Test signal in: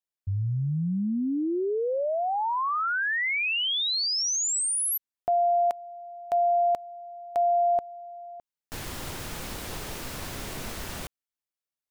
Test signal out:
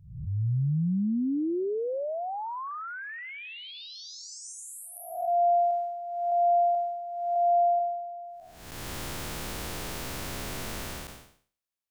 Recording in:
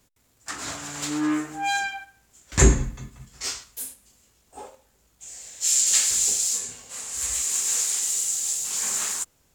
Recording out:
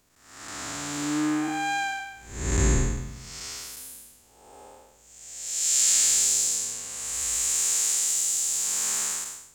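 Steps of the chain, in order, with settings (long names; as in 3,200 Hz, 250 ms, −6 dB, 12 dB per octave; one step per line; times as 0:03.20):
spectrum smeared in time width 353 ms
level +2 dB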